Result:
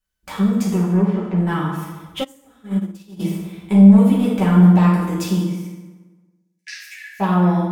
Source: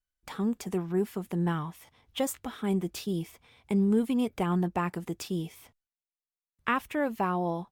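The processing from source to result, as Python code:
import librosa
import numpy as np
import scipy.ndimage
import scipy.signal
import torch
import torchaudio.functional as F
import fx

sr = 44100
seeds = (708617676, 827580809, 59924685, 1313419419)

y = fx.lowpass(x, sr, hz=2600.0, slope=12, at=(0.82, 1.37))
y = fx.fold_sine(y, sr, drive_db=9, ceiling_db=-11.5)
y = fx.cheby_ripple_highpass(y, sr, hz=1600.0, ripple_db=9, at=(5.39, 7.19), fade=0.02)
y = fx.rev_fdn(y, sr, rt60_s=1.3, lf_ratio=1.0, hf_ratio=0.65, size_ms=31.0, drr_db=-6.0)
y = fx.upward_expand(y, sr, threshold_db=-13.0, expansion=2.5, at=(2.23, 3.19), fade=0.02)
y = y * 10.0 ** (-8.5 / 20.0)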